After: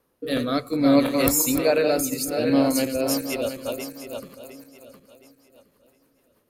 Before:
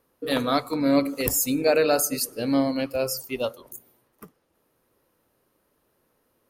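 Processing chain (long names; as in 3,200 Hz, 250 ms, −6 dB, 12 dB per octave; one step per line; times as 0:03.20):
feedback delay that plays each chunk backwards 357 ms, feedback 56%, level −6 dB
rotating-speaker cabinet horn 0.6 Hz, later 6.3 Hz, at 0:02.56
level +3 dB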